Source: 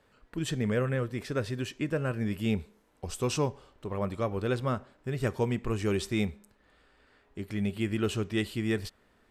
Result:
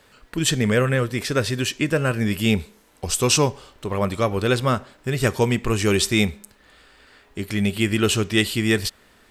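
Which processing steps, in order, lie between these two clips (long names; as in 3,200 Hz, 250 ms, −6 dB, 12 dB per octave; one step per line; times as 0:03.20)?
high-shelf EQ 2,100 Hz +10 dB
level +8.5 dB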